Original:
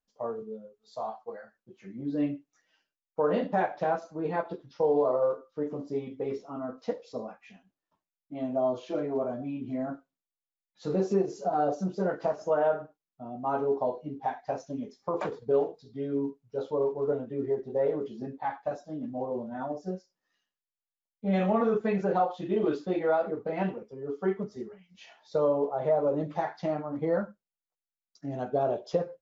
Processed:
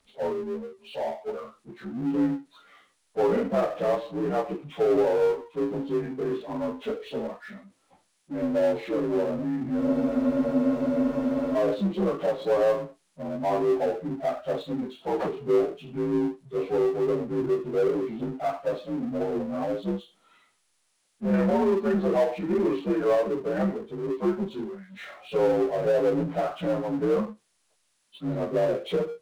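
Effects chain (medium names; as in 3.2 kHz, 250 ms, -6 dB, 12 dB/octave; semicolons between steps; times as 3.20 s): frequency axis rescaled in octaves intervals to 85%; power-law waveshaper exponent 0.7; spectral freeze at 9.82 s, 1.74 s; trim +1.5 dB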